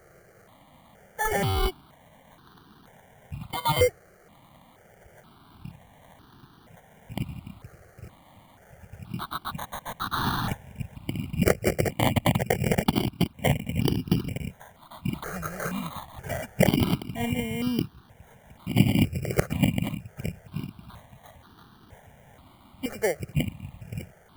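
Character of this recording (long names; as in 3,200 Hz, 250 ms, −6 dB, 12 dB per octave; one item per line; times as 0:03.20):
aliases and images of a low sample rate 2,600 Hz, jitter 0%
notches that jump at a steady rate 2.1 Hz 970–2,100 Hz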